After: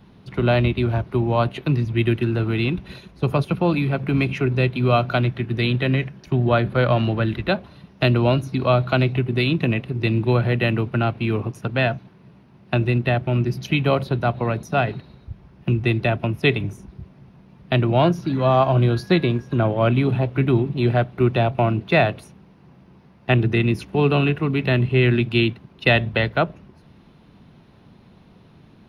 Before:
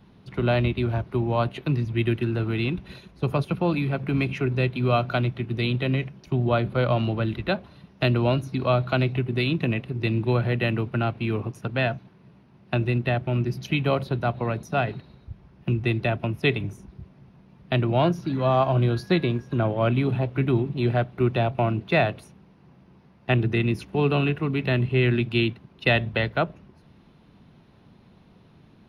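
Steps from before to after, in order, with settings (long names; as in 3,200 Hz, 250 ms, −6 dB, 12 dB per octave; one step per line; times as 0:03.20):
0:05.22–0:07.41: parametric band 1,700 Hz +6.5 dB 0.32 octaves
level +4 dB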